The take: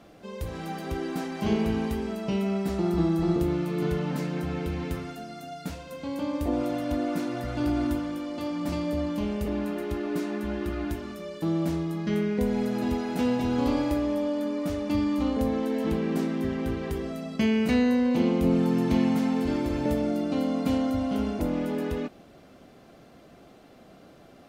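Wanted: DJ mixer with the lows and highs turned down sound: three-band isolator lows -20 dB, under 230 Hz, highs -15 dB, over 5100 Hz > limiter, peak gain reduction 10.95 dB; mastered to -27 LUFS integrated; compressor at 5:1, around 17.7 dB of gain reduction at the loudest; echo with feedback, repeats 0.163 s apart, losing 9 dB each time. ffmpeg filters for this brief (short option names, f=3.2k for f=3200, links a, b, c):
-filter_complex "[0:a]acompressor=threshold=-40dB:ratio=5,acrossover=split=230 5100:gain=0.1 1 0.178[a][b][c];[a][b][c]amix=inputs=3:normalize=0,aecho=1:1:163|326|489|652:0.355|0.124|0.0435|0.0152,volume=23dB,alimiter=limit=-19dB:level=0:latency=1"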